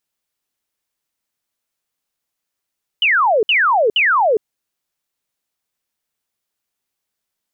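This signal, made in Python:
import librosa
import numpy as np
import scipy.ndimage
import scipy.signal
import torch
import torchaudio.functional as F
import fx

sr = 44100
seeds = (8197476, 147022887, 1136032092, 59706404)

y = fx.laser_zaps(sr, level_db=-11.0, start_hz=3100.0, end_hz=400.0, length_s=0.41, wave='sine', shots=3, gap_s=0.06)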